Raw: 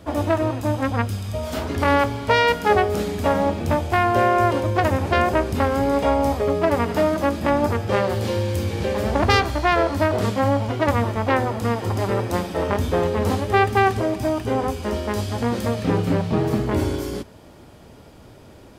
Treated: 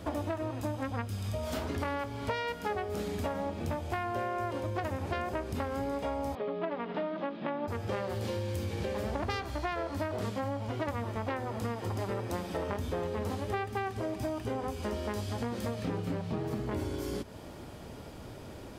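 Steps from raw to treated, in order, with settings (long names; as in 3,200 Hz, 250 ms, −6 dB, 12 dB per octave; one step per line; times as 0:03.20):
downward compressor 6 to 1, threshold −32 dBFS, peak gain reduction 18.5 dB
0:06.35–0:07.68: elliptic band-pass filter 160–3,600 Hz, stop band 40 dB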